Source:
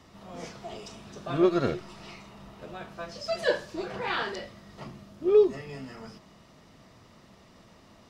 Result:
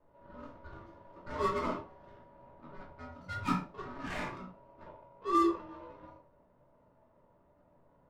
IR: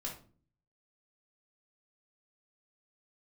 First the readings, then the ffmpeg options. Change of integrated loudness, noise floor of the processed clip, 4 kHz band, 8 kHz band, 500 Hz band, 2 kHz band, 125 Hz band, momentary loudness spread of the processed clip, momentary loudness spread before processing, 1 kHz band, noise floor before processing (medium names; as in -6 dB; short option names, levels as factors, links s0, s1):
-6.5 dB, -67 dBFS, -12.0 dB, no reading, -13.5 dB, -8.5 dB, -5.5 dB, 23 LU, 22 LU, +2.0 dB, -56 dBFS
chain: -filter_complex "[0:a]aeval=exprs='val(0)*sin(2*PI*760*n/s)':c=same,adynamicsmooth=sensitivity=5:basefreq=690[s0];[1:a]atrim=start_sample=2205,atrim=end_sample=6174[s1];[s0][s1]afir=irnorm=-1:irlink=0,volume=0.596"